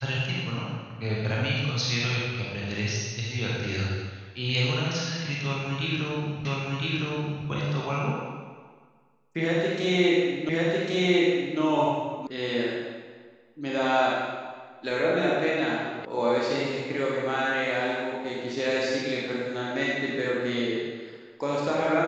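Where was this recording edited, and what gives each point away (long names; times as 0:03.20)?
0:06.45: the same again, the last 1.01 s
0:10.49: the same again, the last 1.1 s
0:12.27: cut off before it has died away
0:16.05: cut off before it has died away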